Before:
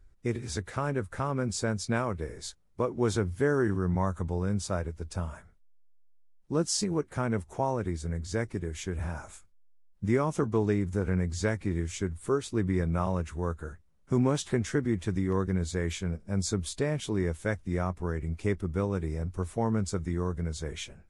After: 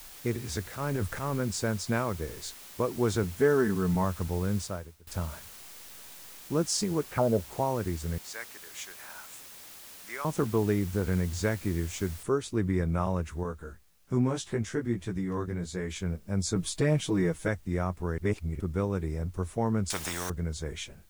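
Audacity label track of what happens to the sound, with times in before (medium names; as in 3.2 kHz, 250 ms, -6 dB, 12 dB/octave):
0.640000	1.400000	transient shaper attack -9 dB, sustain +10 dB
3.230000	4.040000	comb 4.6 ms, depth 61%
4.600000	5.070000	fade out quadratic, to -21 dB
7.040000	7.520000	touch-sensitive low-pass 590–3100 Hz down, full sweep at -26 dBFS
8.180000	10.250000	high-pass 1.2 kHz
12.230000	12.230000	noise floor step -48 dB -67 dB
13.430000	15.960000	chorus 1.2 Hz, delay 16 ms, depth 2.2 ms
16.550000	17.480000	comb 6.3 ms, depth 100%
18.180000	18.600000	reverse
19.900000	20.300000	spectrum-flattening compressor 4:1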